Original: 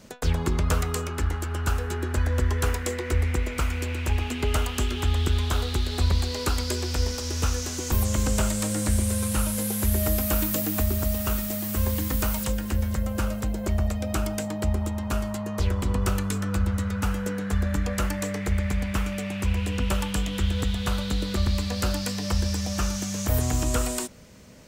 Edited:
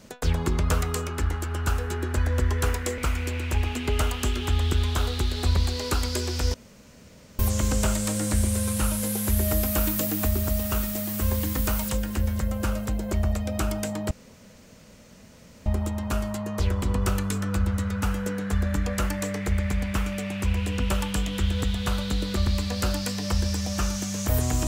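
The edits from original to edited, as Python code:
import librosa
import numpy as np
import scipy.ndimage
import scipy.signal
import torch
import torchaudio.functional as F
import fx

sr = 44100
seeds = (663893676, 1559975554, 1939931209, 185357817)

y = fx.edit(x, sr, fx.cut(start_s=2.98, length_s=0.55),
    fx.room_tone_fill(start_s=7.09, length_s=0.85),
    fx.insert_room_tone(at_s=14.66, length_s=1.55), tone=tone)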